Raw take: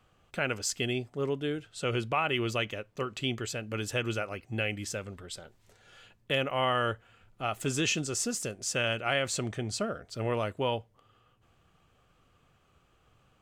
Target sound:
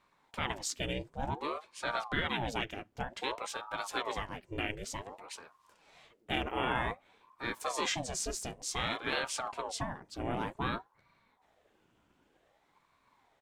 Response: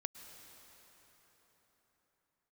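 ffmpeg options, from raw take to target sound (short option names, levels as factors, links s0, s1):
-filter_complex "[0:a]asplit=2[s0][s1];[s1]asetrate=37084,aresample=44100,atempo=1.18921,volume=0.447[s2];[s0][s2]amix=inputs=2:normalize=0,aeval=exprs='val(0)*sin(2*PI*630*n/s+630*0.7/0.54*sin(2*PI*0.54*n/s))':c=same,volume=0.75"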